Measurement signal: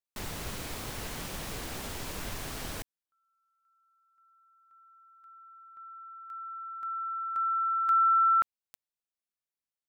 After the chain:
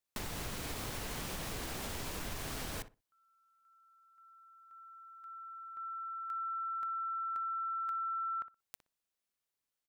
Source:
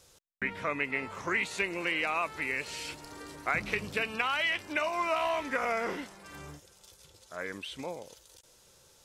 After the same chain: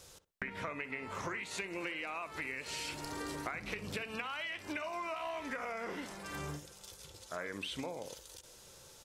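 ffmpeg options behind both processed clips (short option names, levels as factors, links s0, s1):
-filter_complex "[0:a]acompressor=threshold=0.00891:ratio=12:attack=16:release=158:knee=1:detection=rms,asplit=2[s0][s1];[s1]adelay=61,lowpass=f=1700:p=1,volume=0.251,asplit=2[s2][s3];[s3]adelay=61,lowpass=f=1700:p=1,volume=0.2,asplit=2[s4][s5];[s5]adelay=61,lowpass=f=1700:p=1,volume=0.2[s6];[s0][s2][s4][s6]amix=inputs=4:normalize=0,volume=1.58"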